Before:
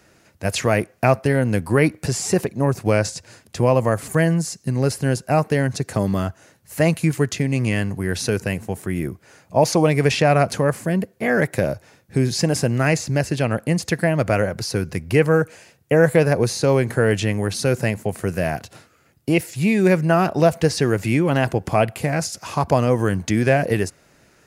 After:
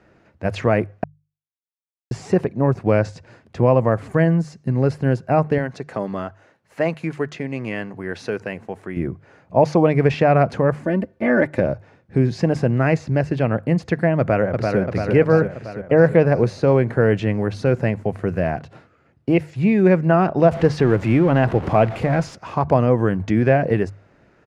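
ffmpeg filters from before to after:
-filter_complex "[0:a]asettb=1/sr,asplit=3[a][b][c];[a]atrim=end=5.584[d];[b]atrim=start=5.58:end=8.97,asetpts=PTS-STARTPTS,afade=t=in:d=0.004:c=qsin,afade=t=out:st=3.386:d=0.004:c=qsin,highpass=f=500:p=1[e];[c]atrim=start=8.966[f];[d][e]acrossfade=d=0.004:c1=hsin:c2=qsin[g];[g][f]acrossfade=d=0.004:c1=qsin:c2=hsin,asettb=1/sr,asplit=3[h][i][j];[h]atrim=end=10.834[k];[i]atrim=start=10.83:end=11.6,asetpts=PTS-STARTPTS,afade=t=in:d=0.004:c=qsin,afade=t=out:st=0.766:d=0.004:c=qsin,aecho=1:1:3.4:0.66,atrim=end_sample=33957[l];[j]atrim=start=11.596[m];[k][l]acrossfade=d=0.004:c1=hsin:c2=qsin[n];[n][m]acrossfade=d=0.004:c1=qsin:c2=hsin,asplit=2[o][p];[p]afade=t=in:st=14.19:d=0.01,afade=t=out:st=14.79:d=0.01,aecho=0:1:340|680|1020|1360|1700|2040|2380|2720|3060|3400:0.668344|0.434424|0.282375|0.183544|0.119304|0.0775473|0.0504058|0.0327637|0.0212964|0.0138427[q];[o][q]amix=inputs=2:normalize=0,asettb=1/sr,asplit=3[r][s][t];[r]atrim=end=20.514[u];[s]atrim=start=20.51:end=22.35,asetpts=PTS-STARTPTS,afade=t=in:d=0.004:c=qsin,afade=t=out:st=1.836:d=0.004:c=qsin,aeval=exprs='val(0)+0.5*0.0531*sgn(val(0))':c=same[v];[t]atrim=start=22.346[w];[u][v]acrossfade=d=0.004:c1=hsin:c2=qsin[x];[x][w]acrossfade=d=0.004:c1=qsin:c2=hsin,asplit=3[y][z][aa];[y]atrim=end=1.04,asetpts=PTS-STARTPTS,afade=t=out:st=1.036:d=0.004:c=hsin[ab];[z]atrim=start=1.04:end=2.11,asetpts=PTS-STARTPTS,volume=0[ac];[aa]atrim=start=2.11,asetpts=PTS-STARTPTS,afade=t=in:d=0.004:c=hsin[ad];[ab][ac][ad]concat=n=3:v=0:a=1,lowpass=f=2.4k:p=1,aemphasis=mode=reproduction:type=75fm,bandreject=f=50:t=h:w=6,bandreject=f=100:t=h:w=6,bandreject=f=150:t=h:w=6,volume=1dB"

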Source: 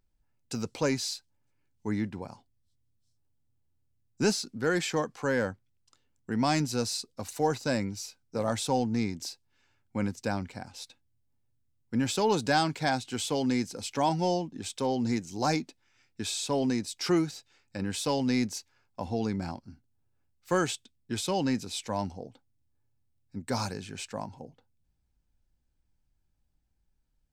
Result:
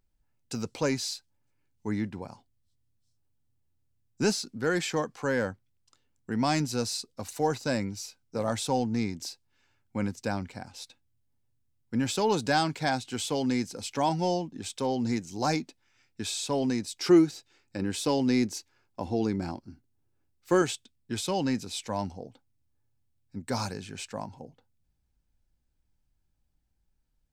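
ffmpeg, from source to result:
-filter_complex "[0:a]asettb=1/sr,asplit=3[a][b][c];[a]atrim=end=16.994[d];[b]atrim=start=16.99:end=20.62,asetpts=PTS-STARTPTS,afade=t=in:d=0.004:c=qsin,afade=t=out:st=3.626:d=0.004:c=qsin,equalizer=f=340:t=o:w=0.56:g=7.5[e];[c]atrim=start=20.616[f];[d][e]acrossfade=d=0.004:c1=hsin:c2=qsin[g];[g][f]acrossfade=d=0.004:c1=qsin:c2=hsin"

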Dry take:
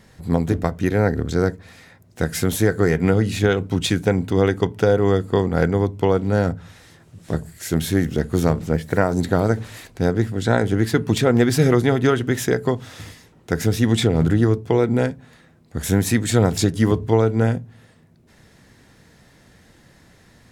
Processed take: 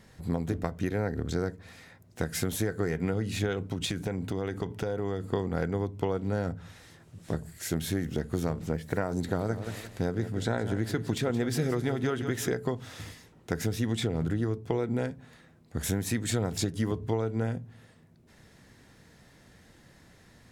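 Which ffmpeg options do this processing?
-filter_complex "[0:a]asettb=1/sr,asplit=3[a][b][c];[a]atrim=end=3.674[d];[b]atrim=start=3.67:end=5.32,asetpts=PTS-STARTPTS,afade=t=in:d=0.004:c=qsin,afade=t=out:st=1.646:d=0.004:c=qsin,acompressor=threshold=-21dB:ratio=6:attack=3.2:release=140:knee=1:detection=peak[e];[c]atrim=start=5.316[f];[d][e]acrossfade=d=0.004:c1=hsin:c2=qsin[g];[g][f]acrossfade=d=0.004:c1=qsin:c2=hsin,asettb=1/sr,asplit=3[h][i][j];[h]atrim=end=9.114[k];[i]atrim=start=9.11:end=12.52,asetpts=PTS-STARTPTS,afade=t=in:d=0.004:c=qsin,afade=t=out:st=3.406:d=0.004:c=qsin,aecho=1:1:172|344|516:0.224|0.0761|0.0259,atrim=end_sample=150381[l];[j]atrim=start=12.516[m];[k][l]acrossfade=d=0.004:c1=hsin:c2=qsin[n];[n][m]acrossfade=d=0.004:c1=qsin:c2=hsin,acompressor=threshold=-21dB:ratio=4,volume=-5dB"

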